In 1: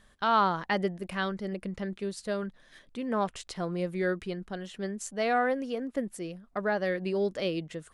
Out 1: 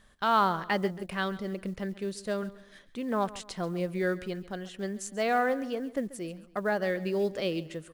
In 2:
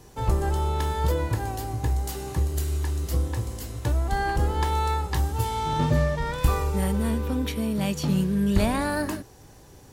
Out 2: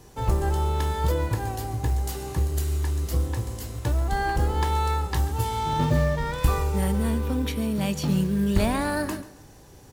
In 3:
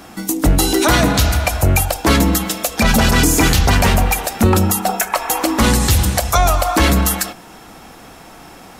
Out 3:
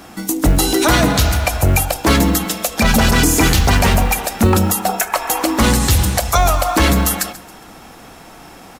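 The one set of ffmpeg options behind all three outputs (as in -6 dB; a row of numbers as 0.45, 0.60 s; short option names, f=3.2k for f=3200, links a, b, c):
-filter_complex "[0:a]acrusher=bits=8:mode=log:mix=0:aa=0.000001,asplit=2[a][b];[b]aecho=0:1:137|274|411:0.133|0.0507|0.0193[c];[a][c]amix=inputs=2:normalize=0"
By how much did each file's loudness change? 0.0, +0.5, 0.0 LU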